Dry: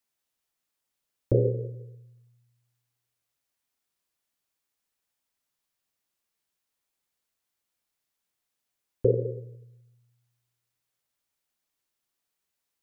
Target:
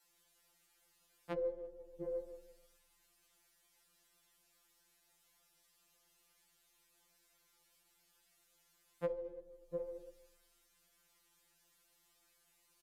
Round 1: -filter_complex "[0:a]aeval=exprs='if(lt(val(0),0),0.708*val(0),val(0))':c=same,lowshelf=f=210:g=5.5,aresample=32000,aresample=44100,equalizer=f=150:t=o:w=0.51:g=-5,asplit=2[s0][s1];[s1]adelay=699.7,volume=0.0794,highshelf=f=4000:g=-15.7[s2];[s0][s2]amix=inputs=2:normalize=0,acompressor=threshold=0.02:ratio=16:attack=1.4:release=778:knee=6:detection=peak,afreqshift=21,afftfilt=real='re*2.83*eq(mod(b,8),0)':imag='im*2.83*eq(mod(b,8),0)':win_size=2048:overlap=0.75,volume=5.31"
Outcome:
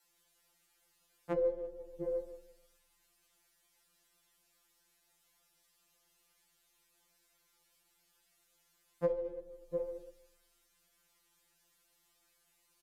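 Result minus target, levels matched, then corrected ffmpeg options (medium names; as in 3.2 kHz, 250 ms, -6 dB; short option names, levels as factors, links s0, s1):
compression: peak gain reduction -6 dB
-filter_complex "[0:a]aeval=exprs='if(lt(val(0),0),0.708*val(0),val(0))':c=same,lowshelf=f=210:g=5.5,aresample=32000,aresample=44100,equalizer=f=150:t=o:w=0.51:g=-5,asplit=2[s0][s1];[s1]adelay=699.7,volume=0.0794,highshelf=f=4000:g=-15.7[s2];[s0][s2]amix=inputs=2:normalize=0,acompressor=threshold=0.00944:ratio=16:attack=1.4:release=778:knee=6:detection=peak,afreqshift=21,afftfilt=real='re*2.83*eq(mod(b,8),0)':imag='im*2.83*eq(mod(b,8),0)':win_size=2048:overlap=0.75,volume=5.31"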